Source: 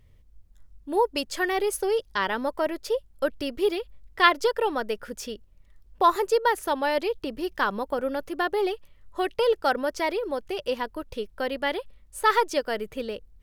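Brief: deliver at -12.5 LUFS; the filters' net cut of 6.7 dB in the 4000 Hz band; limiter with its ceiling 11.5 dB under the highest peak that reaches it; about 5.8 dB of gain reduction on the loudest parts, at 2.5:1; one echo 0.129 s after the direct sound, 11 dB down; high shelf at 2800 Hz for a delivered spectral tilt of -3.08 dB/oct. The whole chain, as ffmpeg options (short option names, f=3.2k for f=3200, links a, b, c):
-af "highshelf=f=2.8k:g=-7,equalizer=f=4k:t=o:g=-3.5,acompressor=threshold=-25dB:ratio=2.5,alimiter=level_in=2.5dB:limit=-24dB:level=0:latency=1,volume=-2.5dB,aecho=1:1:129:0.282,volume=23.5dB"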